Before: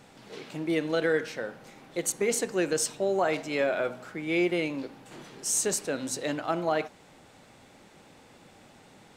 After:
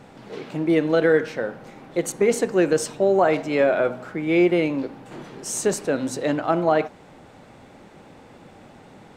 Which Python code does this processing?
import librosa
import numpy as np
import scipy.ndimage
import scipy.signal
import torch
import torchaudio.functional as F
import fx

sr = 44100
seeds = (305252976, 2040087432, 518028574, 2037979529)

y = fx.high_shelf(x, sr, hz=2400.0, db=-11.5)
y = y * 10.0 ** (9.0 / 20.0)